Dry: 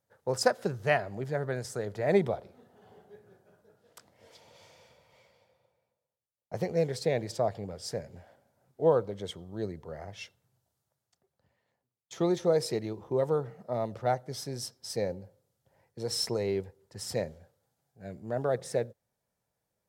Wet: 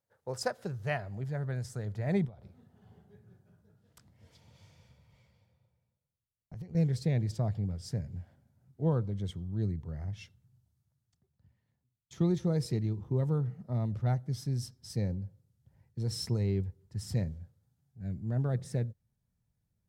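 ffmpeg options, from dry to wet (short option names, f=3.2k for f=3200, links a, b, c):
-filter_complex "[0:a]asettb=1/sr,asplit=3[a][b][c];[a]atrim=end=2.254[d];[b]atrim=start=2.25:end=6.75,asetpts=PTS-STARTPTS,afade=t=in:d=0.004:c=qsin,afade=t=out:st=4.496:d=0.004:c=qsin,acompressor=threshold=-43dB:ratio=6:attack=3.2:release=140:knee=1:detection=peak[e];[c]atrim=start=6.746[f];[d][e]acrossfade=d=0.004:c1=hsin:c2=qsin[g];[g][f]acrossfade=d=0.004:c1=qsin:c2=hsin,asubboost=boost=11.5:cutoff=160,volume=-7dB"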